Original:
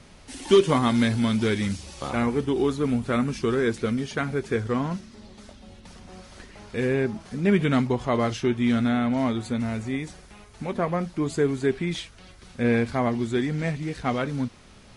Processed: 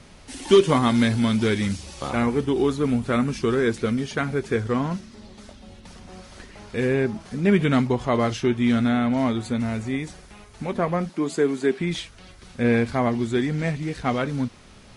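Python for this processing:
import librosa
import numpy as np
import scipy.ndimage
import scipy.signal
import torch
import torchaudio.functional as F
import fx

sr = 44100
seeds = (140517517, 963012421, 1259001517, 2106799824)

y = fx.highpass(x, sr, hz=180.0, slope=24, at=(11.09, 11.8))
y = F.gain(torch.from_numpy(y), 2.0).numpy()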